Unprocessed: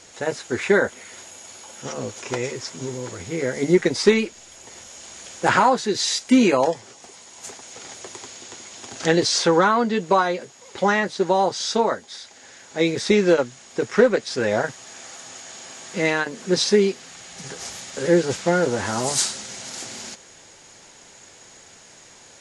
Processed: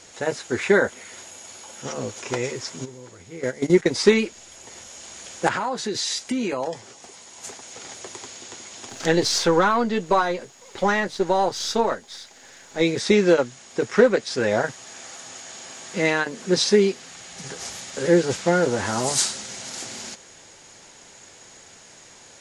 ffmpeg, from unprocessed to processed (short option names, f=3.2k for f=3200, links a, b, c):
-filter_complex "[0:a]asplit=3[a][b][c];[a]afade=t=out:st=2.84:d=0.02[d];[b]agate=range=-11dB:threshold=-24dB:ratio=16:release=100:detection=peak,afade=t=in:st=2.84:d=0.02,afade=t=out:st=3.92:d=0.02[e];[c]afade=t=in:st=3.92:d=0.02[f];[d][e][f]amix=inputs=3:normalize=0,asettb=1/sr,asplit=3[g][h][i];[g]atrim=end=5.484[j];[h]atrim=start=5.48:end=6.73,asetpts=PTS-STARTPTS,afade=t=in:d=0.004:c=qsin,afade=t=out:st=1.246:d=0.004:c=qsin,acompressor=threshold=-22dB:ratio=6:attack=3.2:release=140:knee=1:detection=peak[k];[i]atrim=start=6.726[l];[j][k]acrossfade=d=0.004:c1=hsin:c2=qsin[m];[m][l]acrossfade=d=0.004:c1=qsin:c2=hsin,asplit=3[n][o][p];[n]afade=t=out:st=8.88:d=0.02[q];[o]aeval=exprs='if(lt(val(0),0),0.708*val(0),val(0))':c=same,afade=t=in:st=8.88:d=0.02,afade=t=out:st=12.81:d=0.02[r];[p]afade=t=in:st=12.81:d=0.02[s];[q][r][s]amix=inputs=3:normalize=0"